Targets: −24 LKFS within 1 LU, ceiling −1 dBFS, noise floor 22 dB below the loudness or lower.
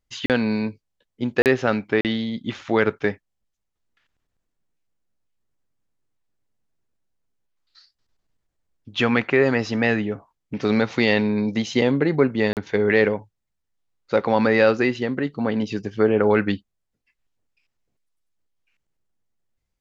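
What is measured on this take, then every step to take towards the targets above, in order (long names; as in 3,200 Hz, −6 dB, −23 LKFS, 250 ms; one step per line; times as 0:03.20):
number of dropouts 4; longest dropout 38 ms; integrated loudness −21.5 LKFS; sample peak −4.0 dBFS; target loudness −24.0 LKFS
→ repair the gap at 0:00.26/0:01.42/0:02.01/0:12.53, 38 ms
level −2.5 dB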